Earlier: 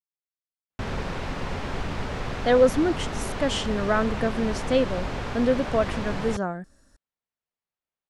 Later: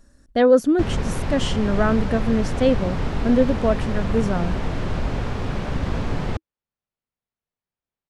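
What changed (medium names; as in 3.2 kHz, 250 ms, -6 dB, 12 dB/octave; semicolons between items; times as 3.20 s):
speech: entry -2.10 s; master: add bass shelf 360 Hz +8.5 dB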